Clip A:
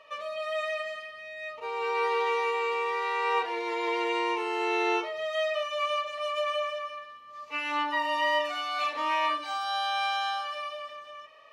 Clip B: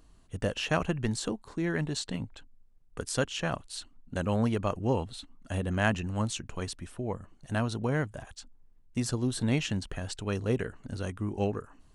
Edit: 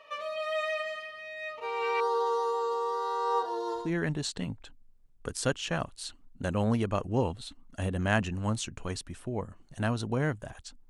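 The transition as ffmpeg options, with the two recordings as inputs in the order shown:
ffmpeg -i cue0.wav -i cue1.wav -filter_complex "[0:a]asettb=1/sr,asplit=3[link_01][link_02][link_03];[link_01]atrim=end=2.004[link_04];[link_02]atrim=start=2:end=3.91,asetpts=PTS-STARTPTS,afade=type=in:duration=0.004:curve=qsin,afade=type=out:start_time=1.906:duration=0.004:curve=qsin,asuperstop=centerf=2300:order=4:qfactor=0.84[link_05];[link_03]atrim=start=3.906[link_06];[link_04][link_05]acrossfade=duration=0.004:curve1=hsin:curve2=qsin[link_07];[link_07][link_06]acrossfade=duration=0.004:curve1=qsin:curve2=hsin,apad=whole_dur=10.89,atrim=end=10.89,atrim=end=3.91,asetpts=PTS-STARTPTS[link_08];[1:a]atrim=start=1.43:end=8.61,asetpts=PTS-STARTPTS[link_09];[link_08][link_09]acrossfade=duration=0.2:curve1=tri:curve2=tri" out.wav

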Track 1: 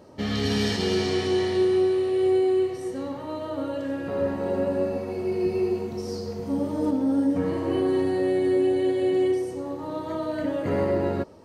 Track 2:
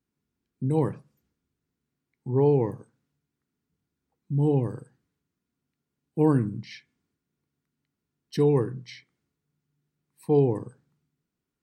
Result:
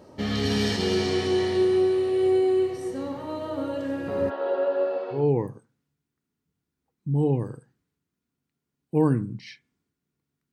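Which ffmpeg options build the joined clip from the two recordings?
ffmpeg -i cue0.wav -i cue1.wav -filter_complex "[0:a]asplit=3[link_01][link_02][link_03];[link_01]afade=type=out:start_time=4.29:duration=0.02[link_04];[link_02]highpass=frequency=400:width=0.5412,highpass=frequency=400:width=1.3066,equalizer=frequency=630:width_type=q:width=4:gain=5,equalizer=frequency=1400:width_type=q:width=4:gain=8,equalizer=frequency=2200:width_type=q:width=4:gain=-8,equalizer=frequency=3300:width_type=q:width=4:gain=7,lowpass=frequency=4000:width=0.5412,lowpass=frequency=4000:width=1.3066,afade=type=in:start_time=4.29:duration=0.02,afade=type=out:start_time=5.28:duration=0.02[link_05];[link_03]afade=type=in:start_time=5.28:duration=0.02[link_06];[link_04][link_05][link_06]amix=inputs=3:normalize=0,apad=whole_dur=10.52,atrim=end=10.52,atrim=end=5.28,asetpts=PTS-STARTPTS[link_07];[1:a]atrim=start=2.34:end=7.76,asetpts=PTS-STARTPTS[link_08];[link_07][link_08]acrossfade=duration=0.18:curve1=tri:curve2=tri" out.wav

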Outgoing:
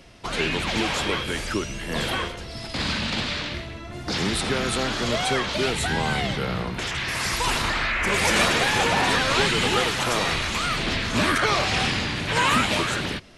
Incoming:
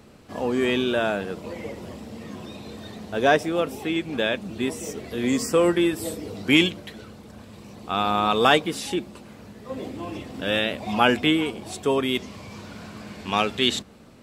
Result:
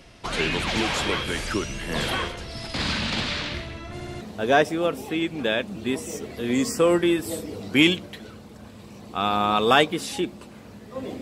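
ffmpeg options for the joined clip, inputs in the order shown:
ffmpeg -i cue0.wav -i cue1.wav -filter_complex "[0:a]apad=whole_dur=11.21,atrim=end=11.21,asplit=4[link_01][link_02][link_03][link_04];[link_01]atrim=end=4.002[link_05];[link_02]atrim=start=3.928:end=4.002[link_06];[link_03]atrim=start=3.928:end=4.002[link_07];[link_04]atrim=start=3.928:end=4.002[link_08];[1:a]atrim=start=2.948:end=9.95[link_09];[link_05][link_06]acrossfade=duration=0.004:curve1=hsin:curve2=hsin[link_10];[link_10][link_07]acrossfade=duration=0.004:curve1=hsin:curve2=hsin[link_11];[link_11][link_08]acrossfade=duration=0.004:curve1=hsin:curve2=hsin[link_12];[link_12][link_09]acrossfade=duration=0.004:curve1=hsin:curve2=hsin" out.wav

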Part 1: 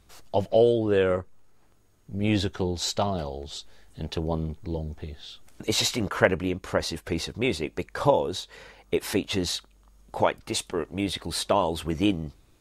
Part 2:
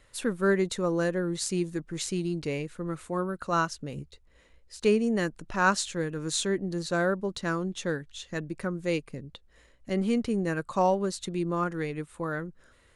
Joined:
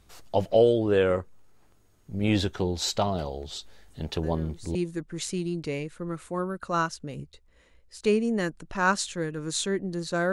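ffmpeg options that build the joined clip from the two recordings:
ffmpeg -i cue0.wav -i cue1.wav -filter_complex "[1:a]asplit=2[link_01][link_02];[0:a]apad=whole_dur=10.32,atrim=end=10.32,atrim=end=4.752[link_03];[link_02]atrim=start=1.538:end=7.11[link_04];[link_01]atrim=start=1.02:end=1.54,asetpts=PTS-STARTPTS,volume=-16dB,afade=type=in:duration=0.004:curve=hsin,afade=type=out:start_time=0.516:duration=0.004:curve=hsin,adelay=4230[link_05];[link_03][link_04]acrossfade=duration=0.004:curve1=hsin:curve2=hsin[link_06];[link_06][link_05]amix=inputs=2:normalize=0" out.wav

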